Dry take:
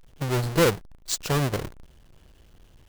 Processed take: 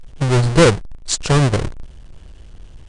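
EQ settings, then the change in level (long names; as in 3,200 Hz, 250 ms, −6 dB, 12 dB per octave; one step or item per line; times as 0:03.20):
linear-phase brick-wall low-pass 10,000 Hz
low-shelf EQ 99 Hz +9 dB
+8.0 dB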